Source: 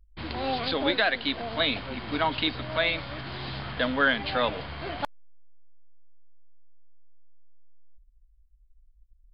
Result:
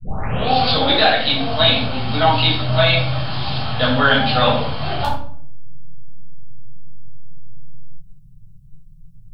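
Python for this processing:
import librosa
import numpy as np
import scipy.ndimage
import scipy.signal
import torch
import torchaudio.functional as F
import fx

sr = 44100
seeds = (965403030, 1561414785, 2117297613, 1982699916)

y = fx.tape_start_head(x, sr, length_s=0.51)
y = fx.graphic_eq_31(y, sr, hz=(125, 315, 800, 2000), db=(10, -6, 5, -8))
y = fx.dmg_noise_band(y, sr, seeds[0], low_hz=88.0, high_hz=170.0, level_db=-63.0)
y = fx.high_shelf(y, sr, hz=3700.0, db=11.5)
y = fx.room_shoebox(y, sr, seeds[1], volume_m3=750.0, walls='furnished', distance_m=6.5)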